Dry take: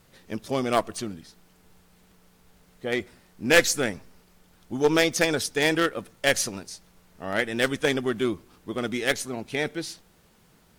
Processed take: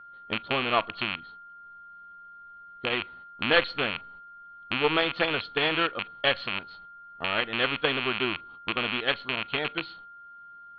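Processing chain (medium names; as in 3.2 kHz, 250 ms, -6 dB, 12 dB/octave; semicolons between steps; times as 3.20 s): rattle on loud lows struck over -37 dBFS, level -12 dBFS; gate -49 dBFS, range -11 dB; in parallel at -1 dB: compression, threshold -33 dBFS, peak gain reduction 19.5 dB; on the sum: transient shaper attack +3 dB, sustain -1 dB; rippled Chebyshev low-pass 4.4 kHz, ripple 9 dB; on a send at -23 dB: reverberation, pre-delay 33 ms; on the sum: whistle 1.4 kHz -43 dBFS; tape noise reduction on one side only decoder only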